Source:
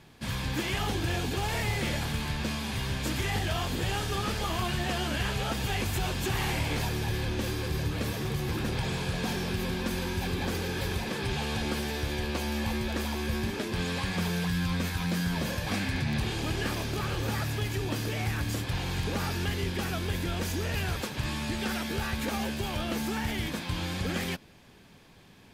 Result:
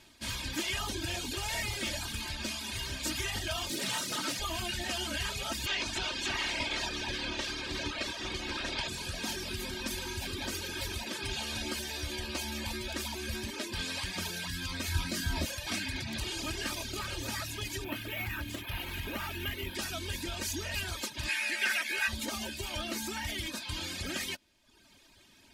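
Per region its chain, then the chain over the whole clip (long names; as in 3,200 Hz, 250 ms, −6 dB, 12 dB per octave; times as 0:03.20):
0:03.69–0:04.40: high-shelf EQ 6,500 Hz +6.5 dB + frequency shifter +78 Hz + highs frequency-modulated by the lows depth 0.45 ms
0:05.65–0:08.87: ceiling on every frequency bin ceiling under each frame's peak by 13 dB + low-pass filter 4,900 Hz
0:14.88–0:15.45: low-shelf EQ 180 Hz +10.5 dB + double-tracking delay 26 ms −6 dB
0:17.84–0:19.75: high shelf with overshoot 3,700 Hz −9 dB, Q 1.5 + bad sample-rate conversion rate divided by 3×, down none, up hold
0:21.28–0:22.07: high-pass filter 410 Hz + flat-topped bell 2,000 Hz +11.5 dB 1 octave + steady tone 11,000 Hz −54 dBFS
whole clip: reverb reduction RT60 0.94 s; parametric band 6,700 Hz +10.5 dB 3 octaves; comb filter 3.2 ms, depth 62%; level −7 dB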